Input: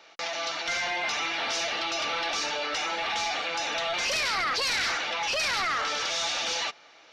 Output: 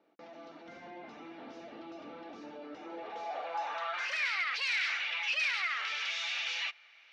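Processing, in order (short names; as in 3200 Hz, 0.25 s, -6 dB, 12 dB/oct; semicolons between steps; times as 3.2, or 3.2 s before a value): band-pass sweep 260 Hz -> 2400 Hz, 2.73–4.36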